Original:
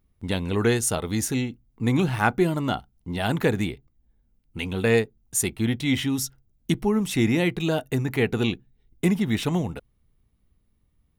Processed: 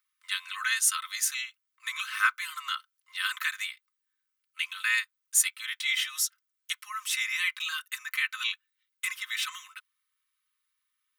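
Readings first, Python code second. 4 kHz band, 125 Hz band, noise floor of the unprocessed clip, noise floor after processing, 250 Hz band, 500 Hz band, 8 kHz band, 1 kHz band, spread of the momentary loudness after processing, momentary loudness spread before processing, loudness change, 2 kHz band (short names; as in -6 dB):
+2.0 dB, under -40 dB, -68 dBFS, -82 dBFS, under -40 dB, under -40 dB, +2.0 dB, -6.0 dB, 12 LU, 11 LU, -4.5 dB, +2.0 dB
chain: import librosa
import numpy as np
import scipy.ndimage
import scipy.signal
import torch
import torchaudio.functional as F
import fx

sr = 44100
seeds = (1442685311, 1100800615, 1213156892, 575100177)

y = scipy.signal.sosfilt(scipy.signal.butter(16, 1100.0, 'highpass', fs=sr, output='sos'), x)
y = y + 0.76 * np.pad(y, (int(3.9 * sr / 1000.0), 0))[:len(y)]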